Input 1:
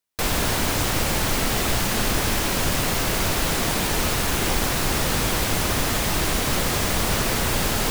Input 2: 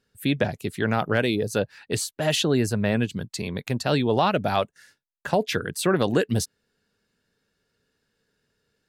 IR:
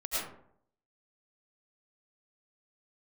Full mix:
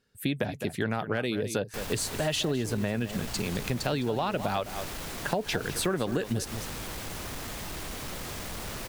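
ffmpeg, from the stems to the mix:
-filter_complex "[0:a]asoftclip=type=tanh:threshold=0.112,adelay=1550,volume=0.237[s0];[1:a]volume=0.944,asplit=3[s1][s2][s3];[s2]volume=0.2[s4];[s3]apad=whole_len=416925[s5];[s0][s5]sidechaincompress=threshold=0.0501:ratio=8:attack=27:release=125[s6];[s4]aecho=0:1:208:1[s7];[s6][s1][s7]amix=inputs=3:normalize=0,acompressor=threshold=0.0562:ratio=6"

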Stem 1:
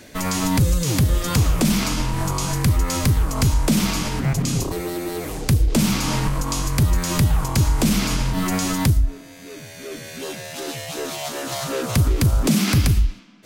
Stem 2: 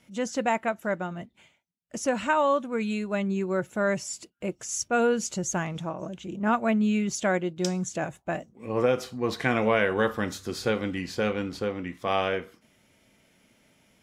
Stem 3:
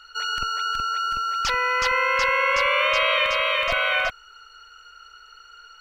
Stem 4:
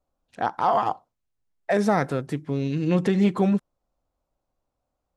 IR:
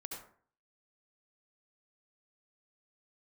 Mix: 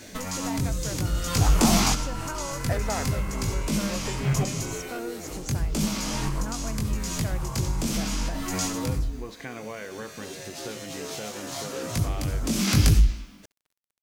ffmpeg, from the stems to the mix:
-filter_complex "[0:a]equalizer=f=6200:w=1.4:g=5.5,asoftclip=type=tanh:threshold=0.422,flanger=delay=18.5:depth=3.6:speed=0.84,volume=1.12,asplit=2[s0][s1];[s1]volume=0.282[s2];[1:a]acompressor=threshold=0.0355:ratio=2.5,volume=0.422,asplit=2[s3][s4];[2:a]acompressor=threshold=0.0447:ratio=6,adelay=900,volume=0.2[s5];[3:a]highpass=f=430:w=0.5412,highpass=f=430:w=1.3066,adelay=1000,volume=0.398[s6];[s4]apad=whole_len=593369[s7];[s0][s7]sidechaincompress=threshold=0.00398:ratio=8:attack=16:release=472[s8];[4:a]atrim=start_sample=2205[s9];[s2][s9]afir=irnorm=-1:irlink=0[s10];[s8][s3][s5][s6][s10]amix=inputs=5:normalize=0,acrusher=bits=9:mix=0:aa=0.000001"

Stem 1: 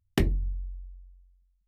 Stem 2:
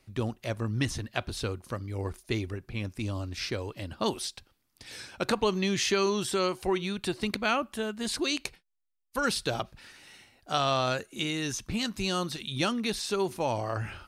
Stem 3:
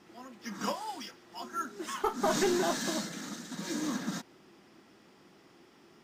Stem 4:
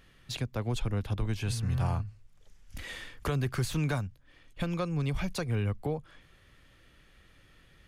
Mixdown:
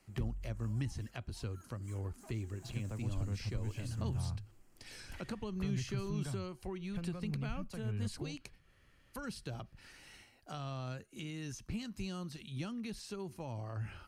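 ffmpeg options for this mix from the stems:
-filter_complex "[0:a]volume=0.188[s0];[1:a]volume=0.596[s1];[2:a]highshelf=f=6200:t=q:w=3:g=8,acompressor=threshold=0.0251:ratio=6,asoftclip=type=tanh:threshold=0.0178,volume=0.178[s2];[3:a]adelay=2350,volume=0.447[s3];[s0][s1][s2][s3]amix=inputs=4:normalize=0,acrossover=split=210[s4][s5];[s5]acompressor=threshold=0.00355:ratio=3[s6];[s4][s6]amix=inputs=2:normalize=0,bandreject=f=3600:w=8.7"

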